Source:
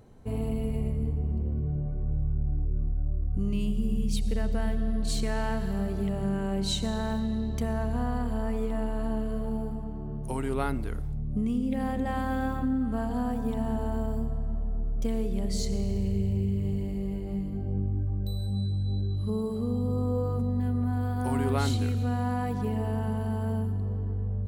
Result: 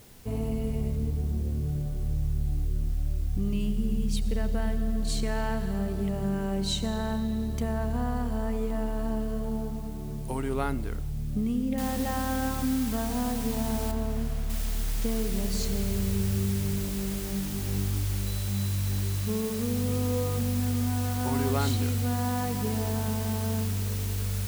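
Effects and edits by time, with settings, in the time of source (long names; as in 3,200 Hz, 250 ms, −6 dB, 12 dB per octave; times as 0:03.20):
0:11.78: noise floor change −56 dB −40 dB
0:13.91–0:14.50: high-shelf EQ 2,400 Hz −10 dB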